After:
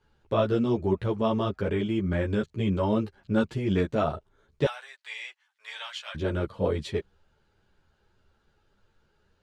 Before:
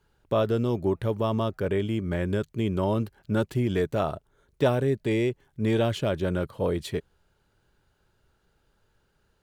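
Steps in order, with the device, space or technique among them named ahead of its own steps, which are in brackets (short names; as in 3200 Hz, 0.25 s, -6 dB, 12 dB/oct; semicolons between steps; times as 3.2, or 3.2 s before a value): 4.65–6.15 Bessel high-pass 1500 Hz, order 6; string-machine ensemble chorus (ensemble effect; LPF 6000 Hz 12 dB/oct); gain +3.5 dB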